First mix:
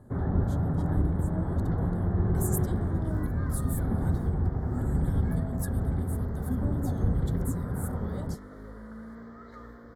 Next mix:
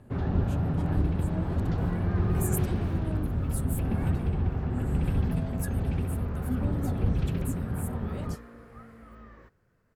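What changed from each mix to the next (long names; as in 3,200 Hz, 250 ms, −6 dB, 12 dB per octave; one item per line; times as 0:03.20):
first sound: remove low-pass filter 1,900 Hz 12 dB per octave
second sound: entry −1.30 s
master: remove Butterworth band-reject 2,600 Hz, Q 2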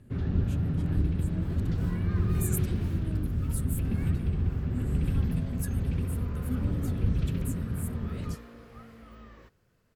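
first sound: add parametric band 810 Hz −13 dB 1.5 octaves
second sound: add high shelf with overshoot 2,300 Hz +6.5 dB, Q 1.5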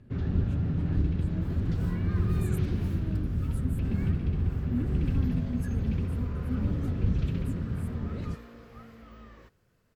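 speech: add spectral tilt −4.5 dB per octave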